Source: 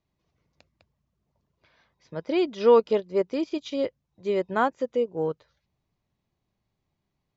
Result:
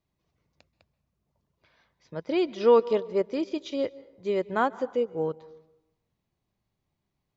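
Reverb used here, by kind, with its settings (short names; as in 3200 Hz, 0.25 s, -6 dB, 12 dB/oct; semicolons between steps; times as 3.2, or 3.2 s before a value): plate-style reverb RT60 0.92 s, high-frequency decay 0.6×, pre-delay 0.12 s, DRR 19.5 dB; gain -1.5 dB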